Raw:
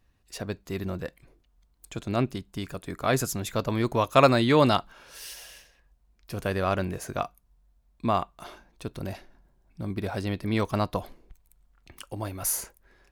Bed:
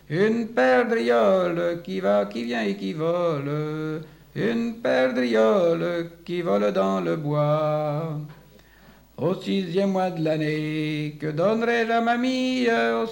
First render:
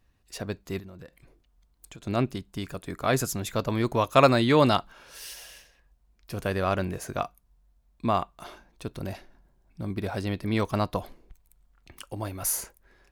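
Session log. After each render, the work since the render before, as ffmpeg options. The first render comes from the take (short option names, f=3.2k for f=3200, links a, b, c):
-filter_complex "[0:a]asettb=1/sr,asplit=3[a][b][c];[a]atrim=end=0.794[d];[b]atrim=start=0.79:end=2.03,asetpts=PTS-STARTPTS,afade=t=in:d=0.004:c=qsin,afade=t=out:st=1.236:d=0.004:c=qsin,acompressor=threshold=-40dB:ratio=12:attack=3.2:release=140:knee=1:detection=peak[e];[c]atrim=start=2.026[f];[d][e]acrossfade=d=0.004:c1=hsin:c2=qsin[g];[g][f]acrossfade=d=0.004:c1=qsin:c2=hsin"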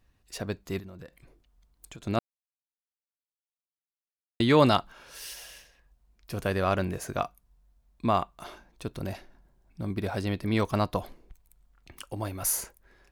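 -filter_complex "[0:a]asplit=3[a][b][c];[a]atrim=end=2.19,asetpts=PTS-STARTPTS,afade=t=out:st=2.186:d=0.004:c=hsin[d];[b]atrim=start=2.19:end=4.4,asetpts=PTS-STARTPTS,volume=0[e];[c]atrim=start=4.4,asetpts=PTS-STARTPTS,afade=t=in:d=0.004:c=hsin[f];[d][e][f]concat=n=3:v=0:a=1"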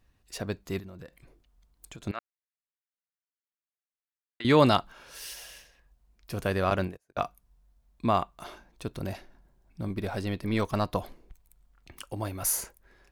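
-filter_complex "[0:a]asettb=1/sr,asplit=3[a][b][c];[a]atrim=end=2.114[d];[b]atrim=start=2.11:end=4.45,asetpts=PTS-STARTPTS,afade=t=in:d=0.004:c=qsin,afade=t=out:st=2.336:d=0.004:c=qsin,bandpass=f=1.7k:t=q:w=1.9[e];[c]atrim=start=4.446[f];[d][e]acrossfade=d=0.004:c1=hsin:c2=qsin[g];[g][f]acrossfade=d=0.004:c1=qsin:c2=hsin,asettb=1/sr,asplit=3[h][i][j];[h]atrim=end=6.704[k];[i]atrim=start=6.7:end=7.23,asetpts=PTS-STARTPTS,afade=t=in:d=0.004:c=qsin,afade=t=out:st=0.526:d=0.004:c=qsin,agate=range=-39dB:threshold=-31dB:ratio=16:release=100:detection=peak[l];[j]atrim=start=7.226[m];[k][l]acrossfade=d=0.004:c1=hsin:c2=qsin[n];[n][m]acrossfade=d=0.004:c1=qsin:c2=hsin,asettb=1/sr,asplit=3[o][p][q];[o]atrim=end=9.884[r];[p]atrim=start=9.88:end=10.88,asetpts=PTS-STARTPTS,afade=t=in:d=0.004:c=qsin,afade=t=out:st=0.996:d=0.004:c=qsin,aeval=exprs='if(lt(val(0),0),0.708*val(0),val(0))':c=same[s];[q]atrim=start=10.876[t];[r][s]acrossfade=d=0.004:c1=hsin:c2=qsin[u];[u][t]acrossfade=d=0.004:c1=qsin:c2=hsin"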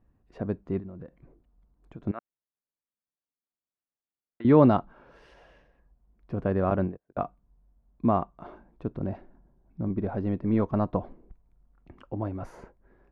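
-af "lowpass=1.1k,equalizer=f=230:t=o:w=1.6:g=5.5"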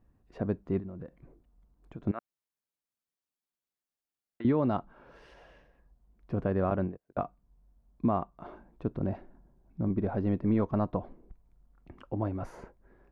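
-af "alimiter=limit=-18dB:level=0:latency=1:release=467"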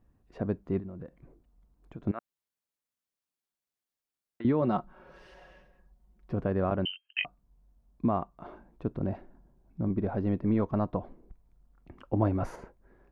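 -filter_complex "[0:a]asettb=1/sr,asplit=3[a][b][c];[a]atrim=end=4.614[d];[b]atrim=start=4.61:end=6.33,asetpts=PTS-STARTPTS,afade=t=in:d=0.004:c=qsin,afade=t=out:st=1.716:d=0.004:c=qsin,aecho=1:1:5.4:0.65,atrim=end_sample=75852[e];[c]atrim=start=6.326[f];[d][e]acrossfade=d=0.004:c1=hsin:c2=qsin[g];[g][f]acrossfade=d=0.004:c1=qsin:c2=hsin,asettb=1/sr,asplit=3[h][i][j];[h]atrim=end=6.854[k];[i]atrim=start=6.85:end=7.25,asetpts=PTS-STARTPTS,afade=t=in:d=0.004:c=qsin,afade=t=out:st=0.396:d=0.004:c=qsin,lowpass=f=2.7k:t=q:w=0.5098,lowpass=f=2.7k:t=q:w=0.6013,lowpass=f=2.7k:t=q:w=0.9,lowpass=f=2.7k:t=q:w=2.563,afreqshift=-3200[l];[j]atrim=start=7.246[m];[k][l]acrossfade=d=0.004:c1=hsin:c2=qsin[n];[n][m]acrossfade=d=0.004:c1=qsin:c2=hsin,asettb=1/sr,asplit=3[o][p][q];[o]atrim=end=12.134[r];[p]atrim=start=12.13:end=12.56,asetpts=PTS-STARTPTS,afade=t=in:d=0.004:c=qsin,afade=t=out:st=0.426:d=0.004:c=qsin,acontrast=46[s];[q]atrim=start=12.556[t];[r][s]acrossfade=d=0.004:c1=hsin:c2=qsin[u];[u][t]acrossfade=d=0.004:c1=qsin:c2=hsin"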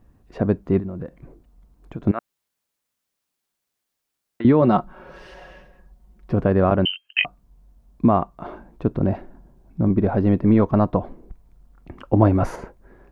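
-af "volume=11dB"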